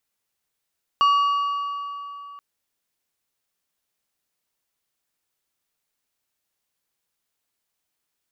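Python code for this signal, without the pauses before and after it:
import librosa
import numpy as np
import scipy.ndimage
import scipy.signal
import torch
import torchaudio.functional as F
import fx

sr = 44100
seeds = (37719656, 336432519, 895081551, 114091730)

y = fx.strike_metal(sr, length_s=1.38, level_db=-13.5, body='plate', hz=1140.0, decay_s=3.26, tilt_db=11.0, modes=5)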